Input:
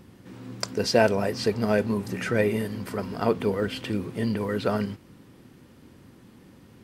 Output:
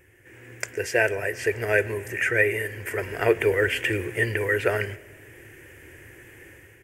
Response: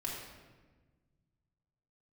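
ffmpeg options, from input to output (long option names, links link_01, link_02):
-filter_complex "[0:a]firequalizer=gain_entry='entry(100,0);entry(210,-23);entry(350,2);entry(830,-5);entry(1200,-8);entry(1700,14);entry(2600,8);entry(4000,-15);entry(6700,4);entry(13000,6)':delay=0.05:min_phase=1,dynaudnorm=framelen=130:gausssize=7:maxgain=11dB,asplit=2[link_01][link_02];[1:a]atrim=start_sample=2205,adelay=105[link_03];[link_02][link_03]afir=irnorm=-1:irlink=0,volume=-23dB[link_04];[link_01][link_04]amix=inputs=2:normalize=0,volume=-5dB"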